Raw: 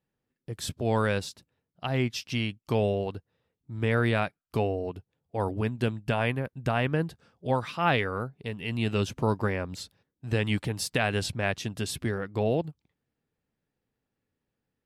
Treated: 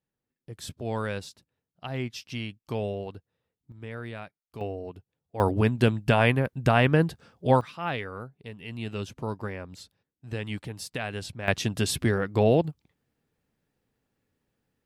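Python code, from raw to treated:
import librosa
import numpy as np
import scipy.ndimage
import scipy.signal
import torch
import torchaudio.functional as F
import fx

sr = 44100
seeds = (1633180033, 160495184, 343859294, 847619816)

y = fx.gain(x, sr, db=fx.steps((0.0, -5.0), (3.72, -13.0), (4.61, -5.0), (5.4, 6.0), (7.61, -6.5), (11.48, 5.5)))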